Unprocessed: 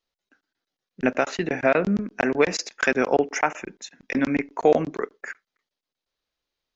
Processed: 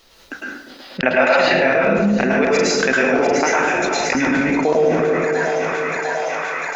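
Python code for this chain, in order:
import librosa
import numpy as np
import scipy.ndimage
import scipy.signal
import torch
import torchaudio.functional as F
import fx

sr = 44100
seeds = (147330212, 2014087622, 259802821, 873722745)

y = fx.echo_split(x, sr, split_hz=680.0, low_ms=242, high_ms=699, feedback_pct=52, wet_db=-9)
y = fx.spec_box(y, sr, start_s=0.69, length_s=0.88, low_hz=510.0, high_hz=5200.0, gain_db=12)
y = fx.rev_plate(y, sr, seeds[0], rt60_s=0.63, hf_ratio=0.85, predelay_ms=95, drr_db=-5.0)
y = fx.env_flatten(y, sr, amount_pct=70)
y = y * 10.0 ** (-9.0 / 20.0)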